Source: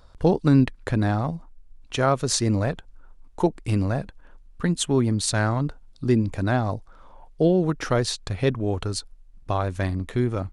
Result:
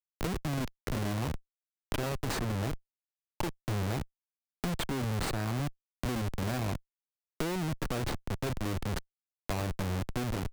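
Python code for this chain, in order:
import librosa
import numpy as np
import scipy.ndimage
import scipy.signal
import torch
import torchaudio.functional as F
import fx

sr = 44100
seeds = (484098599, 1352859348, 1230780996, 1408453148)

y = fx.dynamic_eq(x, sr, hz=5900.0, q=1.3, threshold_db=-45.0, ratio=4.0, max_db=-6)
y = fx.schmitt(y, sr, flips_db=-26.5)
y = fx.band_squash(y, sr, depth_pct=70)
y = F.gain(torch.from_numpy(y), -7.5).numpy()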